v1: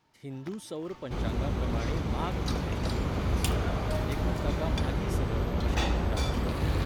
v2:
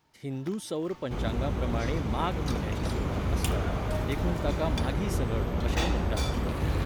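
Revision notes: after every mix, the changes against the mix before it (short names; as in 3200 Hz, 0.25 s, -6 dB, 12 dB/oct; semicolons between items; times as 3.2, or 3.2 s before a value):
speech +5.0 dB; first sound: add high shelf 9800 Hz +8 dB; second sound: add bell 4500 Hz -5 dB 0.59 oct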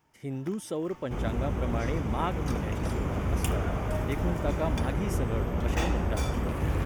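master: add bell 4100 Hz -12.5 dB 0.42 oct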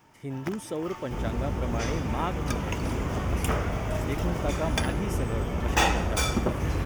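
first sound +11.5 dB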